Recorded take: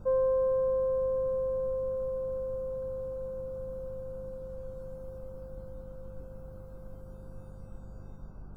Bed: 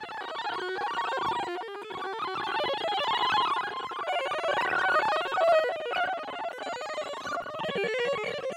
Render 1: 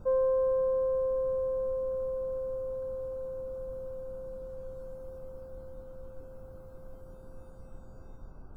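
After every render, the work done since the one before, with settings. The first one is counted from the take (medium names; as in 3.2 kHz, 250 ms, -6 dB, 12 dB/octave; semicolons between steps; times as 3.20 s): de-hum 50 Hz, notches 6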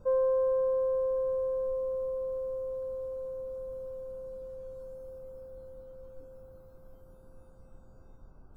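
noise print and reduce 6 dB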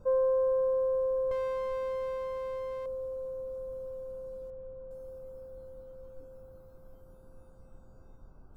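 1.31–2.86 s: comb filter that takes the minimum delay 0.37 ms; 4.50–4.91 s: distance through air 490 m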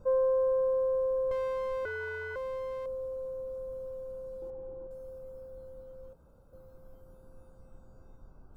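1.85–2.36 s: ring modulator 960 Hz; 4.42–4.87 s: small resonant body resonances 340/810 Hz, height 16 dB; 6.13–6.53 s: room tone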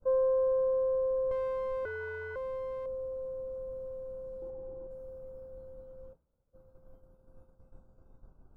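expander -46 dBFS; treble shelf 2.1 kHz -10 dB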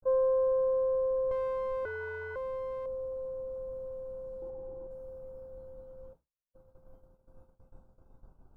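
expander -55 dBFS; peaking EQ 870 Hz +4 dB 0.55 oct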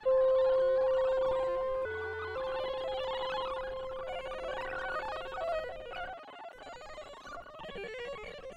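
add bed -12.5 dB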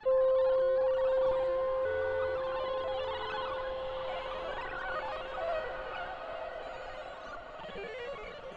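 distance through air 74 m; echo that smears into a reverb 931 ms, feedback 41%, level -5 dB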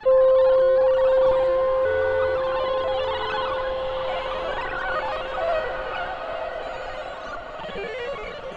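trim +10.5 dB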